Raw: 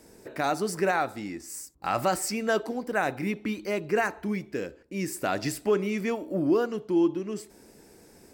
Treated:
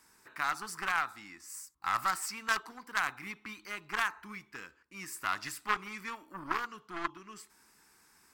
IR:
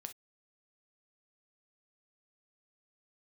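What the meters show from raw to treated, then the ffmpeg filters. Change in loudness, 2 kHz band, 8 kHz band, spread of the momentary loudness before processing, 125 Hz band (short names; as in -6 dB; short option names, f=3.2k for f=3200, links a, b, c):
-7.0 dB, -1.0 dB, -5.5 dB, 11 LU, -18.0 dB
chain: -af "aeval=exprs='0.211*(cos(1*acos(clip(val(0)/0.211,-1,1)))-cos(1*PI/2))+0.0841*(cos(3*acos(clip(val(0)/0.211,-1,1)))-cos(3*PI/2))+0.0299*(cos(5*acos(clip(val(0)/0.211,-1,1)))-cos(5*PI/2))+0.0266*(cos(6*acos(clip(val(0)/0.211,-1,1)))-cos(6*PI/2))+0.0168*(cos(8*acos(clip(val(0)/0.211,-1,1)))-cos(8*PI/2))':c=same,lowshelf=f=790:t=q:w=3:g=-12"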